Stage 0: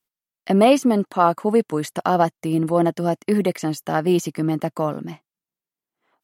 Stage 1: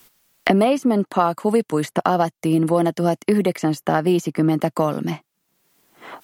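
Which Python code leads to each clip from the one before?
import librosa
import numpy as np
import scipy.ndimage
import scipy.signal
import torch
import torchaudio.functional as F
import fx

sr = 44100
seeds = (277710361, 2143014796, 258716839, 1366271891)

y = fx.band_squash(x, sr, depth_pct=100)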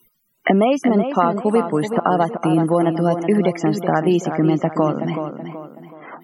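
y = fx.spec_topn(x, sr, count=64)
y = fx.echo_tape(y, sr, ms=376, feedback_pct=43, wet_db=-7.0, lp_hz=3000.0, drive_db=2.0, wow_cents=8)
y = y * 10.0 ** (1.0 / 20.0)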